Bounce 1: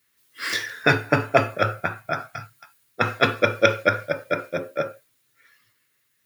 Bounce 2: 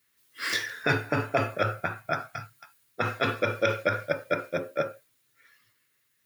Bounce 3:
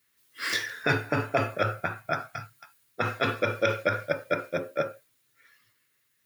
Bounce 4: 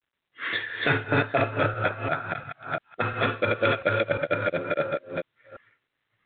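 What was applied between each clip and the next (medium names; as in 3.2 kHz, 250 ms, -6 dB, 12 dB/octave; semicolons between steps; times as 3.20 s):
peak limiter -10 dBFS, peak gain reduction 8 dB; trim -2.5 dB
no audible change
chunks repeated in reverse 348 ms, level -2 dB; level-controlled noise filter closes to 2.3 kHz, open at -24.5 dBFS; trim +1 dB; G.726 32 kbps 8 kHz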